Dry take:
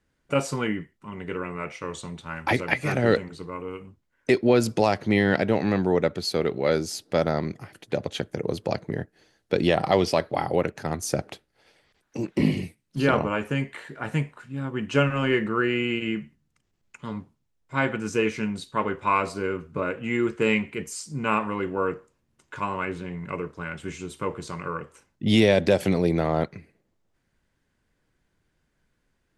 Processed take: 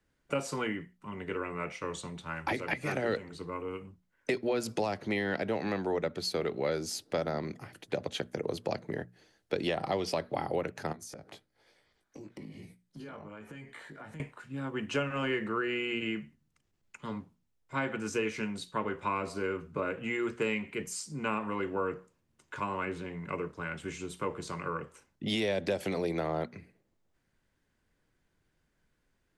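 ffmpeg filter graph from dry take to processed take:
-filter_complex "[0:a]asettb=1/sr,asplit=3[a][b][c];[a]atrim=end=10.924[d];[b]atrim=start=10.92:end=14.2,asetpts=PTS-STARTPTS,afade=t=in:d=0.004:c=qsin,afade=t=out:st=3.276:d=0.004:c=qsin,bandreject=f=2.7k:w=9.3,flanger=delay=17:depth=2.6:speed=1.1,acompressor=threshold=-39dB:ratio=8:attack=3.2:release=140:knee=1:detection=peak[e];[c]atrim=start=14.196[f];[d][e]acrossfade=d=0.004:c1=hsin:c2=qsin[g];[g][f]acrossfade=d=0.004:c1=qsin:c2=hsin,acrossover=split=200|420[h][i][j];[h]acompressor=threshold=-41dB:ratio=4[k];[i]acompressor=threshold=-34dB:ratio=4[l];[j]acompressor=threshold=-28dB:ratio=4[m];[k][l][m]amix=inputs=3:normalize=0,bandreject=f=60:t=h:w=6,bandreject=f=120:t=h:w=6,bandreject=f=180:t=h:w=6,bandreject=f=240:t=h:w=6,volume=-3dB"

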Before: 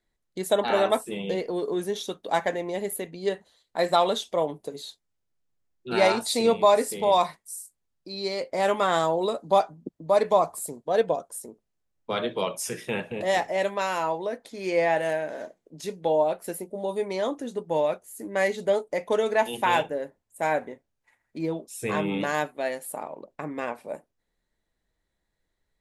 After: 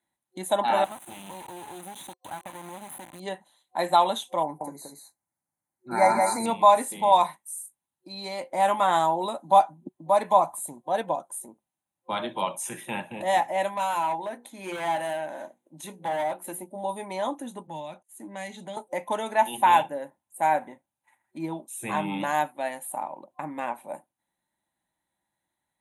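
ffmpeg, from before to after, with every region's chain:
-filter_complex "[0:a]asettb=1/sr,asplit=3[a][b][c];[a]atrim=end=0.844[d];[b]atrim=start=0.84:end=3.2,asetpts=PTS-STARTPTS,afade=t=in:d=0.004:c=qsin,afade=t=out:st=2.356:d=0.004:c=qsin,acompressor=threshold=-33dB:ratio=4:attack=3.2:release=140:knee=1:detection=peak,acrusher=bits=4:dc=4:mix=0:aa=0.000001,bandreject=f=5.3k:w=6.2[e];[c]atrim=start=3.196[f];[d][e]acrossfade=d=0.004:c1=hsin:c2=qsin[g];[g][f]acrossfade=d=0.004:c1=qsin:c2=hsin,asettb=1/sr,asplit=3[h][i][j];[h]atrim=end=4.434[k];[i]atrim=start=4.43:end=6.46,asetpts=PTS-STARTPTS,afade=t=in:d=0.004:c=qsin,afade=t=out:st=2.026:d=0.004:c=qsin,asuperstop=centerf=3100:order=12:qfactor=1.7,aecho=1:1:176:0.631,atrim=end_sample=89523[l];[j]atrim=start=6.456[m];[k][l]acrossfade=d=0.004:c1=hsin:c2=qsin[n];[n][m]acrossfade=d=0.004:c1=qsin:c2=hsin,asettb=1/sr,asplit=3[o][p][q];[o]atrim=end=13.724[r];[p]atrim=start=13.72:end=16.62,asetpts=PTS-STARTPTS,afade=t=in:d=0.004:c=qsin,afade=t=out:st=2.896:d=0.004:c=qsin,bandreject=f=60:t=h:w=6,bandreject=f=120:t=h:w=6,bandreject=f=180:t=h:w=6,bandreject=f=240:t=h:w=6,bandreject=f=300:t=h:w=6,bandreject=f=360:t=h:w=6,bandreject=f=420:t=h:w=6,bandreject=f=480:t=h:w=6,asoftclip=type=hard:threshold=-25dB[s];[q]atrim=start=16.616[t];[r][s]acrossfade=d=0.004:c1=hsin:c2=qsin[u];[u][t]acrossfade=d=0.004:c1=qsin:c2=hsin,asettb=1/sr,asplit=3[v][w][x];[v]atrim=end=17.674[y];[w]atrim=start=17.67:end=18.77,asetpts=PTS-STARTPTS,afade=t=in:d=0.004:c=qsin,afade=t=out:st=1.096:d=0.004:c=qsin,lowpass=6.7k,agate=range=-27dB:threshold=-53dB:ratio=16:release=100:detection=peak,acrossover=split=220|3000[z][aa][ab];[aa]acompressor=threshold=-37dB:ratio=4:attack=3.2:release=140:knee=2.83:detection=peak[ac];[z][ac][ab]amix=inputs=3:normalize=0[ad];[x]atrim=start=18.766[ae];[y][ad]acrossfade=d=0.004:c1=hsin:c2=qsin[af];[af][ae]acrossfade=d=0.004:c1=qsin:c2=hsin,highpass=130,acrossover=split=8000[ag][ah];[ah]acompressor=threshold=-45dB:ratio=4:attack=1:release=60[ai];[ag][ai]amix=inputs=2:normalize=0,superequalizer=7b=0.282:9b=2.51:14b=0.251:16b=2.82,volume=-2dB"

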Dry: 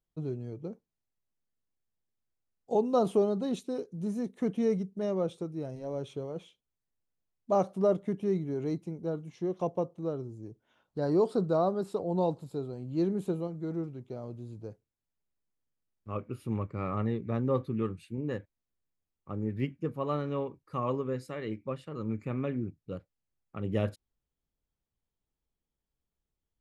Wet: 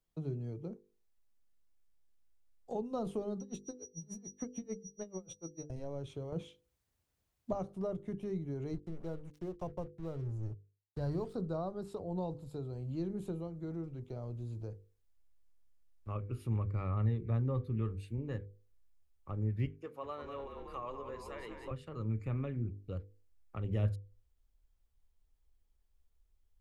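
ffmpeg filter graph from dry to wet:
-filter_complex "[0:a]asettb=1/sr,asplit=3[a][b][c];[a]atrim=end=3.404[d];[b]atrim=start=3.4:end=5.7,asetpts=PTS-STARTPTS,afade=t=in:d=0.004:c=qsin,afade=t=out:st=2.296:d=0.004:c=qsin,aeval=exprs='val(0)+0.00891*sin(2*PI*5800*n/s)':c=same,aeval=exprs='val(0)*pow(10,-37*(0.5-0.5*cos(2*PI*6.8*n/s))/20)':c=same[e];[c]atrim=start=5.696[f];[d][e]acrossfade=d=0.004:c1=hsin:c2=qsin[g];[g][f]acrossfade=d=0.004:c1=qsin:c2=hsin,asettb=1/sr,asplit=3[h][i][j];[h]atrim=end=6.324[k];[i]atrim=start=6.32:end=7.53,asetpts=PTS-STARTPTS,afade=t=in:d=0.004:c=qsin,afade=t=out:st=1.206:d=0.004:c=qsin,highpass=110,lowshelf=f=160:g=9,acontrast=53[l];[j]atrim=start=7.526[m];[k][l]acrossfade=d=0.004:c1=hsin:c2=qsin[n];[n][m]acrossfade=d=0.004:c1=qsin:c2=hsin,asettb=1/sr,asplit=3[o][p][q];[o]atrim=end=8.734[r];[p]atrim=start=8.73:end=11.34,asetpts=PTS-STARTPTS,afade=t=in:d=0.004:c=qsin,afade=t=out:st=2.606:d=0.004:c=qsin,highpass=45,asubboost=boost=8:cutoff=110,aeval=exprs='sgn(val(0))*max(abs(val(0))-0.00224,0)':c=same[s];[q]atrim=start=11.336[t];[r][s]acrossfade=d=0.004:c1=hsin:c2=qsin[u];[u][t]acrossfade=d=0.004:c1=qsin:c2=hsin,asettb=1/sr,asplit=3[v][w][x];[v]atrim=end=19.664[y];[w]atrim=start=19.66:end=21.71,asetpts=PTS-STARTPTS,afade=t=in:d=0.004:c=qsin,afade=t=out:st=2.046:d=0.004:c=qsin,highpass=480,asplit=9[z][aa][ab][ac][ad][ae][af][ag][ah];[aa]adelay=190,afreqshift=-40,volume=-8.5dB[ai];[ab]adelay=380,afreqshift=-80,volume=-12.7dB[aj];[ac]adelay=570,afreqshift=-120,volume=-16.8dB[ak];[ad]adelay=760,afreqshift=-160,volume=-21dB[al];[ae]adelay=950,afreqshift=-200,volume=-25.1dB[am];[af]adelay=1140,afreqshift=-240,volume=-29.3dB[an];[ag]adelay=1330,afreqshift=-280,volume=-33.4dB[ao];[ah]adelay=1520,afreqshift=-320,volume=-37.6dB[ap];[z][ai][aj][ak][al][am][an][ao][ap]amix=inputs=9:normalize=0,atrim=end_sample=90405[aq];[x]atrim=start=21.706[ar];[y][aq]acrossfade=d=0.004:c1=hsin:c2=qsin[as];[as][ar]acrossfade=d=0.004:c1=qsin:c2=hsin,bandreject=f=50:t=h:w=6,bandreject=f=100:t=h:w=6,bandreject=f=150:t=h:w=6,bandreject=f=200:t=h:w=6,bandreject=f=250:t=h:w=6,bandreject=f=300:t=h:w=6,bandreject=f=350:t=h:w=6,bandreject=f=400:t=h:w=6,bandreject=f=450:t=h:w=6,bandreject=f=500:t=h:w=6,asubboost=boost=8.5:cutoff=57,acrossover=split=180[at][au];[au]acompressor=threshold=-51dB:ratio=2[av];[at][av]amix=inputs=2:normalize=0,volume=2.5dB"

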